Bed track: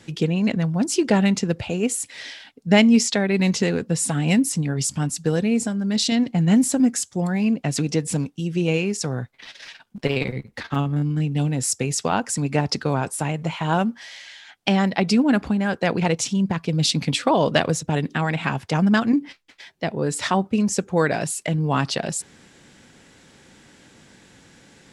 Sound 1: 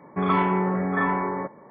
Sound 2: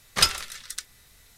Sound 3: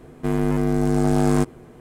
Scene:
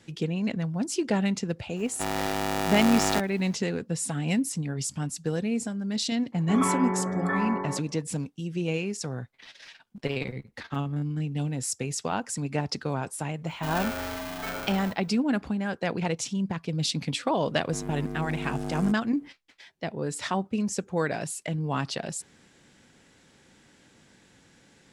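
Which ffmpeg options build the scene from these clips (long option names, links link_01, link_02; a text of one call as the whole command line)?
ffmpeg -i bed.wav -i cue0.wav -i cue1.wav -i cue2.wav -filter_complex "[3:a]asplit=2[link_01][link_02];[1:a]asplit=2[link_03][link_04];[0:a]volume=-7.5dB[link_05];[link_01]aeval=exprs='val(0)*sgn(sin(2*PI*520*n/s))':channel_layout=same[link_06];[link_04]aeval=exprs='val(0)*sgn(sin(2*PI*450*n/s))':channel_layout=same[link_07];[link_06]atrim=end=1.8,asetpts=PTS-STARTPTS,volume=-8.5dB,afade=type=in:duration=0.004:curve=hsin,afade=type=out:start_time=1.796:duration=0.004:curve=hsin,adelay=1760[link_08];[link_03]atrim=end=1.7,asetpts=PTS-STARTPTS,volume=-5dB,afade=type=in:duration=0.004:curve=hsin,afade=type=out:start_time=1.696:duration=0.004:curve=hsin,adelay=6320[link_09];[link_07]atrim=end=1.7,asetpts=PTS-STARTPTS,volume=-11dB,afade=type=in:duration=0.004:curve=hsin,afade=type=out:start_time=1.696:duration=0.004:curve=hsin,adelay=13460[link_10];[link_02]atrim=end=1.8,asetpts=PTS-STARTPTS,volume=-14.5dB,afade=type=in:duration=0.004:curve=hsin,afade=type=out:start_time=1.796:duration=0.004:curve=hsin,adelay=770868S[link_11];[link_05][link_08][link_09][link_10][link_11]amix=inputs=5:normalize=0" out.wav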